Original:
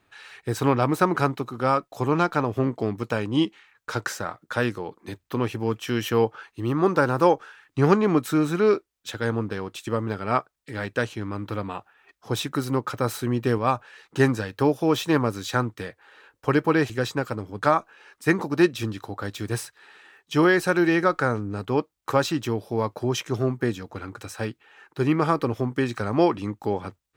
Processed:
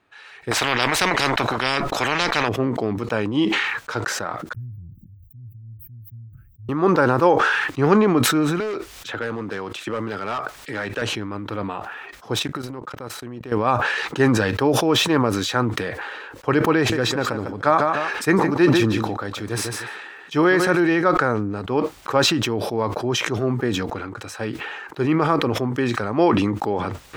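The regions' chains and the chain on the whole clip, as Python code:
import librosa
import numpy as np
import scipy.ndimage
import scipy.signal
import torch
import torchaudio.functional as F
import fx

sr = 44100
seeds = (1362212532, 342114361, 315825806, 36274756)

y = fx.chain(x, sr, fx.tilt_eq(slope=-3.0),
    fx.spectral_comp(ratio=10.0), at=(0.51, 2.49))
y = fx.chain(y, sr, fx.cheby2_bandstop(low_hz=440.0, high_hz=7300.0, order=4, stop_db=70),
    fx.peak_eq(hz=1600.0, db=5.5, octaves=2.2), at=(4.53, 6.69))
y = fx.chain(y, sr, fx.low_shelf(hz=450.0, db=-6.0),
    fx.clip_hard(threshold_db=-23.0),
    fx.band_squash(depth_pct=100), at=(8.6, 11.02))
y = fx.chain(y, sr, fx.transient(attack_db=-6, sustain_db=-12),
    fx.level_steps(step_db=17), at=(12.39, 13.52))
y = fx.chain(y, sr, fx.notch(hz=2900.0, q=24.0),
    fx.echo_feedback(ms=150, feedback_pct=16, wet_db=-12.5), at=(16.77, 20.8))
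y = fx.lowpass(y, sr, hz=3600.0, slope=6)
y = fx.low_shelf(y, sr, hz=130.0, db=-9.0)
y = fx.sustainer(y, sr, db_per_s=28.0)
y = F.gain(torch.from_numpy(y), 2.5).numpy()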